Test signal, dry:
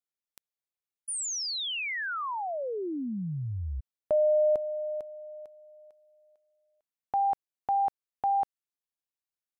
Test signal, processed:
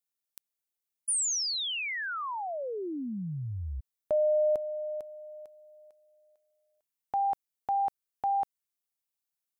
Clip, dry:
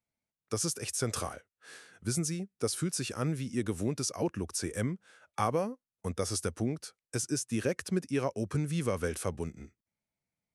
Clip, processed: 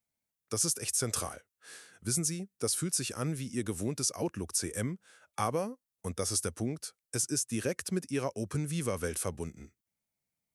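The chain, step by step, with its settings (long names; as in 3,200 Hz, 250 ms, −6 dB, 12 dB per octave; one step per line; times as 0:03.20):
high-shelf EQ 6,200 Hz +10 dB
level −2 dB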